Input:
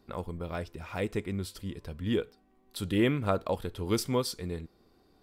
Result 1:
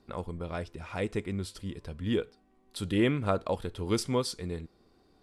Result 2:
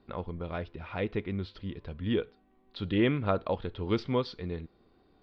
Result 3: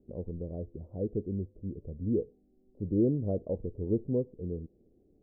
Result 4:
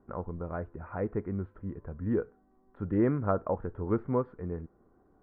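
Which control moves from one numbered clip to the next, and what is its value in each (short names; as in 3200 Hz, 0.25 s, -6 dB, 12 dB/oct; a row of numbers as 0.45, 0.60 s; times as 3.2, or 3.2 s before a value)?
steep low-pass, frequency: 11000, 4100, 550, 1600 Hz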